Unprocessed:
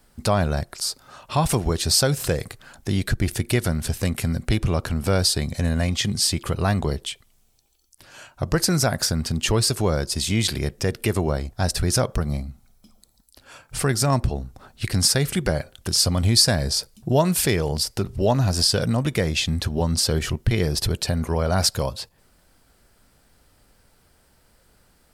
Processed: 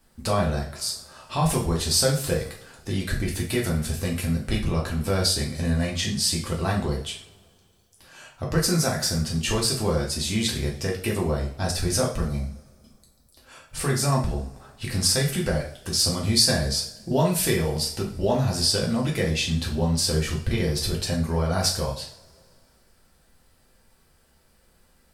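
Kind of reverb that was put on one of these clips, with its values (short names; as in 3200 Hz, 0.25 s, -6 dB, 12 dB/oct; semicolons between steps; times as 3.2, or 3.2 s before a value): two-slope reverb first 0.41 s, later 2.4 s, from -26 dB, DRR -2.5 dB; gain -6.5 dB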